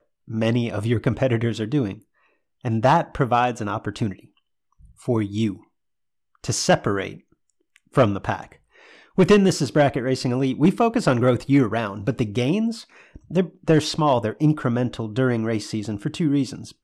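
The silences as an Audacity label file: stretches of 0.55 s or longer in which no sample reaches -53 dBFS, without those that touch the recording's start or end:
5.670000	6.350000	silence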